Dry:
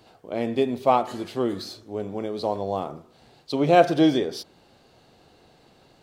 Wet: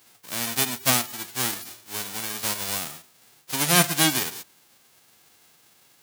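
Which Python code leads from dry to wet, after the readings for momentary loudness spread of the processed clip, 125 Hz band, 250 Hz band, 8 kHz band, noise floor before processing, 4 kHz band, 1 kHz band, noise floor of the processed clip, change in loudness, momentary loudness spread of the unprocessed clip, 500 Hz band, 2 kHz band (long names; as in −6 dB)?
15 LU, +0.5 dB, −7.0 dB, can't be measured, −58 dBFS, +9.5 dB, −6.0 dB, −59 dBFS, 0.0 dB, 16 LU, −12.0 dB, +7.0 dB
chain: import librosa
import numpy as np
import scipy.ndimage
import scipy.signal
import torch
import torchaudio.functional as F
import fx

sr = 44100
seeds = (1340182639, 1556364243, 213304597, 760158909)

y = fx.envelope_flatten(x, sr, power=0.1)
y = scipy.signal.sosfilt(scipy.signal.butter(2, 80.0, 'highpass', fs=sr, output='sos'), y)
y = fx.spec_gate(y, sr, threshold_db=-20, keep='strong')
y = F.gain(torch.from_numpy(y), -1.5).numpy()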